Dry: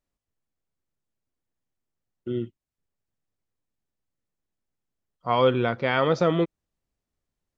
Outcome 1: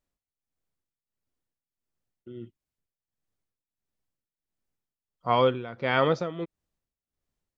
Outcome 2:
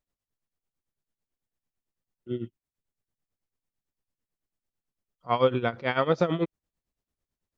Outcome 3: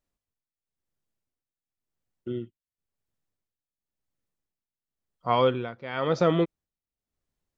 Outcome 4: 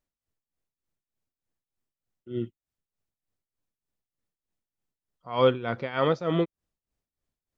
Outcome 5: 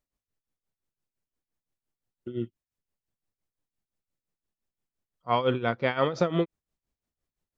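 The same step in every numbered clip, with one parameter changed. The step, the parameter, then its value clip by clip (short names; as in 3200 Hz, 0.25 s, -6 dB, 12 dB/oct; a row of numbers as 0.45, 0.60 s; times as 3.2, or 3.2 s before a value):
tremolo, rate: 1.5, 9, 0.95, 3.3, 5.8 Hz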